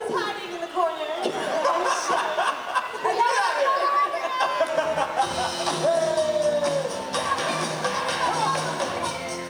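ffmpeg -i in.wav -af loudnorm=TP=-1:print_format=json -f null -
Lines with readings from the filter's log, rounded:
"input_i" : "-24.5",
"input_tp" : "-9.3",
"input_lra" : "2.6",
"input_thresh" : "-34.5",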